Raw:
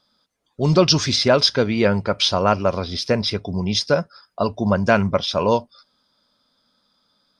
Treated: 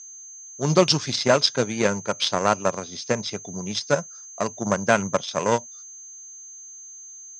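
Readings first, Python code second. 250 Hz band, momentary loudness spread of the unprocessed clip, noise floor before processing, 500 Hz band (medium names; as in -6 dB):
-5.5 dB, 8 LU, -69 dBFS, -3.5 dB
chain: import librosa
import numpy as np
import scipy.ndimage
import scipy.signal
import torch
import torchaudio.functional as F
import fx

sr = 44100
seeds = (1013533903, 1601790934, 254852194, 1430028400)

y = x + 10.0 ** (-29.0 / 20.0) * np.sin(2.0 * np.pi * 6300.0 * np.arange(len(x)) / sr)
y = fx.cheby_harmonics(y, sr, harmonics=(7,), levels_db=(-21,), full_scale_db=-1.5)
y = scipy.signal.sosfilt(scipy.signal.ellip(3, 1.0, 40, [120.0, 8000.0], 'bandpass', fs=sr, output='sos'), y)
y = y * 10.0 ** (-1.5 / 20.0)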